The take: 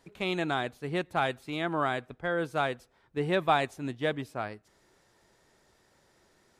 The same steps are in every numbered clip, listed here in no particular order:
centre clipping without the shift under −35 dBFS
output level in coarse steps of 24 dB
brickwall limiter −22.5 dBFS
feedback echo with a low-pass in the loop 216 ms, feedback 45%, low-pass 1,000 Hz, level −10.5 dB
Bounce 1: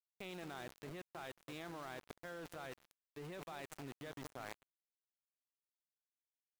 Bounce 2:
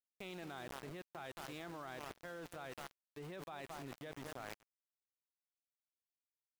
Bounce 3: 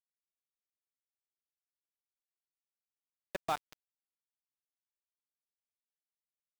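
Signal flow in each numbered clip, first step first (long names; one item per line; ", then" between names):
brickwall limiter, then feedback echo with a low-pass in the loop, then centre clipping without the shift, then output level in coarse steps
feedback echo with a low-pass in the loop, then centre clipping without the shift, then brickwall limiter, then output level in coarse steps
output level in coarse steps, then brickwall limiter, then feedback echo with a low-pass in the loop, then centre clipping without the shift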